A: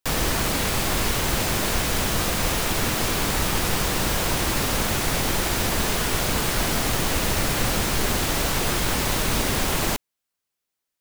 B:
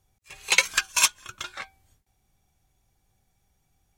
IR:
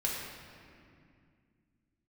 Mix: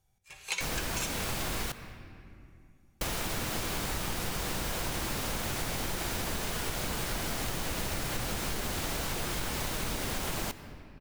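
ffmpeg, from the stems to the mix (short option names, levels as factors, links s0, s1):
-filter_complex "[0:a]adelay=550,volume=0.562,asplit=3[s0][s1][s2];[s0]atrim=end=1.72,asetpts=PTS-STARTPTS,afade=t=out:st=1.716:d=0.004:c=hsin[s3];[s1]atrim=start=1.72:end=3.01,asetpts=PTS-STARTPTS,volume=0[s4];[s2]atrim=start=3.01,asetpts=PTS-STARTPTS,afade=t=in:d=0.004:c=hsin[s5];[s3][s4][s5]concat=n=3:v=0:a=1,asplit=2[s6][s7];[s7]volume=0.119[s8];[1:a]alimiter=limit=0.316:level=0:latency=1,volume=0.376,asplit=2[s9][s10];[s10]volume=0.531[s11];[2:a]atrim=start_sample=2205[s12];[s8][s11]amix=inputs=2:normalize=0[s13];[s13][s12]afir=irnorm=-1:irlink=0[s14];[s6][s9][s14]amix=inputs=3:normalize=0,acompressor=threshold=0.0316:ratio=6"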